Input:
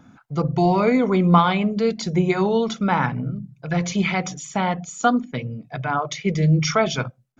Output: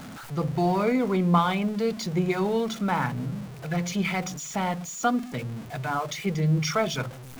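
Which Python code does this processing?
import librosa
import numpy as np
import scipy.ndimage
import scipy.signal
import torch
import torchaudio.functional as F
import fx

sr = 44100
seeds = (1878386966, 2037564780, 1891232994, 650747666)

y = x + 0.5 * 10.0 ** (-29.5 / 20.0) * np.sign(x)
y = y * librosa.db_to_amplitude(-6.5)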